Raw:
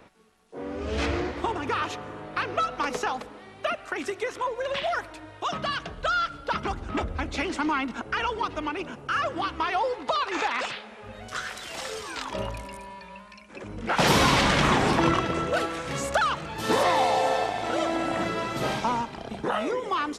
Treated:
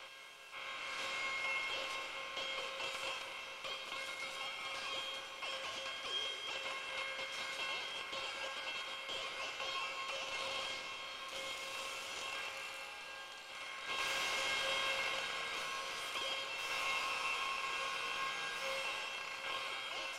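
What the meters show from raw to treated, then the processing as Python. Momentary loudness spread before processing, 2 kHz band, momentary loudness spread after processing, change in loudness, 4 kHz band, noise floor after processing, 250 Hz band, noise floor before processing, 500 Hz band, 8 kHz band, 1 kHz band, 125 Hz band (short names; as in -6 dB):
14 LU, -9.0 dB, 8 LU, -12.5 dB, -6.0 dB, -49 dBFS, -30.0 dB, -47 dBFS, -19.0 dB, -9.5 dB, -17.0 dB, -32.0 dB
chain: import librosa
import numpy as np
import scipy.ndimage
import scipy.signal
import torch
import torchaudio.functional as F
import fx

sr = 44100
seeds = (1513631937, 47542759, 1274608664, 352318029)

y = fx.bin_compress(x, sr, power=0.4)
y = fx.highpass(y, sr, hz=240.0, slope=6)
y = y * np.sin(2.0 * np.pi * 1800.0 * np.arange(len(y)) / sr)
y = fx.low_shelf(y, sr, hz=450.0, db=-10.5)
y = fx.comb_fb(y, sr, f0_hz=540.0, decay_s=0.53, harmonics='all', damping=0.0, mix_pct=90)
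y = fx.echo_split(y, sr, split_hz=1400.0, low_ms=220, high_ms=107, feedback_pct=52, wet_db=-7.5)
y = y * librosa.db_to_amplitude(-2.0)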